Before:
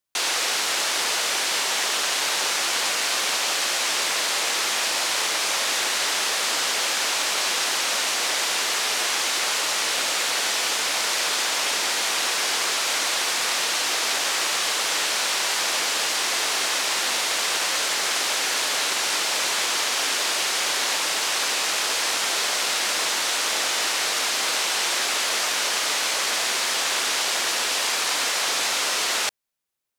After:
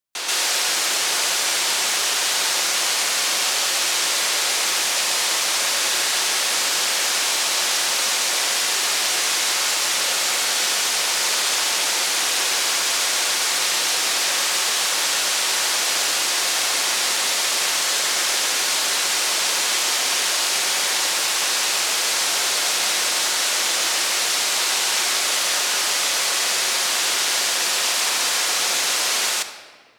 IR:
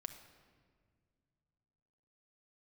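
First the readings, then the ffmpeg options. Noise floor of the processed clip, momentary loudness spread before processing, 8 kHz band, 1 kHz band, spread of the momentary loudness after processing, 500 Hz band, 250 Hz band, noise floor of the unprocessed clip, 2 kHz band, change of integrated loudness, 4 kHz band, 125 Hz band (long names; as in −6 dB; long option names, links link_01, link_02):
−22 dBFS, 0 LU, +4.5 dB, +1.0 dB, 0 LU, +0.5 dB, +0.5 dB, −25 dBFS, +1.5 dB, +3.0 dB, +3.0 dB, can't be measured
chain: -filter_complex "[0:a]asplit=2[link_01][link_02];[1:a]atrim=start_sample=2205,highshelf=frequency=3900:gain=7.5,adelay=133[link_03];[link_02][link_03]afir=irnorm=-1:irlink=0,volume=5dB[link_04];[link_01][link_04]amix=inputs=2:normalize=0,volume=-3.5dB"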